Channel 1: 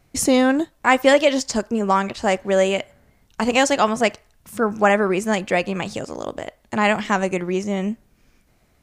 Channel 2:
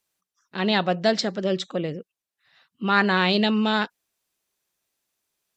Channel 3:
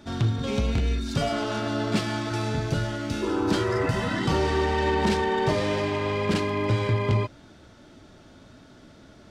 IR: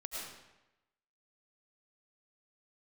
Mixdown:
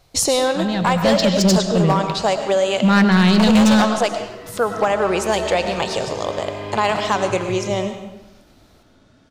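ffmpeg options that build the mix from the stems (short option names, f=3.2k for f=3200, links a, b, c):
-filter_complex "[0:a]equalizer=f=250:t=o:w=1:g=-11,equalizer=f=500:t=o:w=1:g=4,equalizer=f=1k:t=o:w=1:g=4,equalizer=f=2k:t=o:w=1:g=-6,equalizer=f=4k:t=o:w=1:g=10,acompressor=threshold=-17dB:ratio=16,volume=0.5dB,asplit=2[a][b];[b]volume=-3.5dB[c];[1:a]equalizer=f=170:w=1.7:g=13.5,acontrast=84,volume=-6dB,afade=t=in:st=0.93:d=0.2:silence=0.375837,asplit=3[d][e][f];[e]volume=-4dB[g];[2:a]alimiter=limit=-17.5dB:level=0:latency=1:release=320,adelay=600,volume=-6dB,asplit=2[h][i];[i]volume=-7.5dB[j];[f]apad=whole_len=436884[k];[h][k]sidechaincompress=threshold=-37dB:ratio=8:attack=16:release=1170[l];[3:a]atrim=start_sample=2205[m];[c][g][j]amix=inputs=3:normalize=0[n];[n][m]afir=irnorm=-1:irlink=0[o];[a][d][l][o]amix=inputs=4:normalize=0,volume=9.5dB,asoftclip=hard,volume=-9.5dB"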